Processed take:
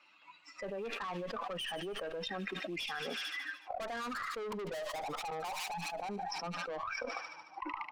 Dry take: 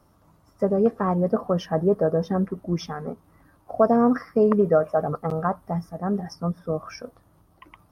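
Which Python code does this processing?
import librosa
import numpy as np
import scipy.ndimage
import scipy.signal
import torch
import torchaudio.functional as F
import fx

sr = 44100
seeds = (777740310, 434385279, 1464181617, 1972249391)

y = fx.bin_expand(x, sr, power=1.5)
y = scipy.signal.sosfilt(scipy.signal.butter(4, 200.0, 'highpass', fs=sr, output='sos'), y)
y = fx.noise_reduce_blind(y, sr, reduce_db=9)
y = scipy.signal.sosfilt(scipy.signal.butter(4, 5100.0, 'lowpass', fs=sr, output='sos'), y)
y = fx.quant_float(y, sr, bits=6)
y = fx.filter_sweep_bandpass(y, sr, from_hz=2600.0, to_hz=870.0, start_s=3.56, end_s=4.6, q=5.5)
y = fx.tube_stage(y, sr, drive_db=50.0, bias=0.25)
y = fx.echo_wet_highpass(y, sr, ms=74, feedback_pct=62, hz=2400.0, wet_db=-15.0)
y = fx.env_flatten(y, sr, amount_pct=100)
y = F.gain(torch.from_numpy(y), 11.0).numpy()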